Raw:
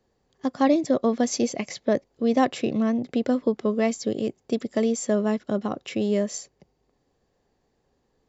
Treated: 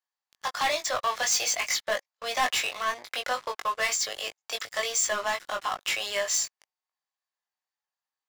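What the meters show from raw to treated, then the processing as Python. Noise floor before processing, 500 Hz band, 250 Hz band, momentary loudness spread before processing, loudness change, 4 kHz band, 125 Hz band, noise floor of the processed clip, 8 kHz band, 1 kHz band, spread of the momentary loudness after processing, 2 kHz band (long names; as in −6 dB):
−72 dBFS, −9.5 dB, −29.0 dB, 8 LU, −3.0 dB, +9.5 dB, below −20 dB, below −85 dBFS, can't be measured, +1.5 dB, 8 LU, +8.5 dB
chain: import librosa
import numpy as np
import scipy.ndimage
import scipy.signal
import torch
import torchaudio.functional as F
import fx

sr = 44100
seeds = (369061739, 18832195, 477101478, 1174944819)

y = scipy.signal.sosfilt(scipy.signal.cheby2(4, 80, 160.0, 'highpass', fs=sr, output='sos'), x)
y = fx.leveller(y, sr, passes=5)
y = fx.doubler(y, sr, ms=20.0, db=-4.0)
y = y * 10.0 ** (-6.0 / 20.0)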